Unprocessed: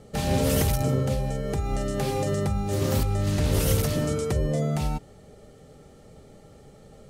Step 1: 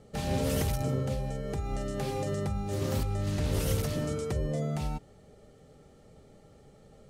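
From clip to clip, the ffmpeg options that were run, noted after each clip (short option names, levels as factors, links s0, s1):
-af "highshelf=f=10000:g=-5,volume=0.501"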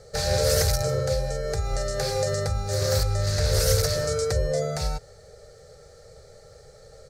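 -af "firequalizer=gain_entry='entry(100,0);entry(260,-23);entry(480,6);entry(960,-7);entry(1500,6);entry(3000,-8);entry(4300,11);entry(10000,2)':delay=0.05:min_phase=1,volume=2.24"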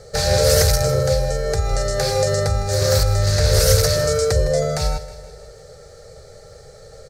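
-af "aecho=1:1:158|316|474|632|790:0.168|0.094|0.0526|0.0295|0.0165,volume=2.11"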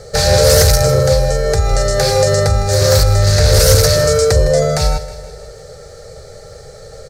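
-af "asoftclip=type=tanh:threshold=0.398,volume=2.24"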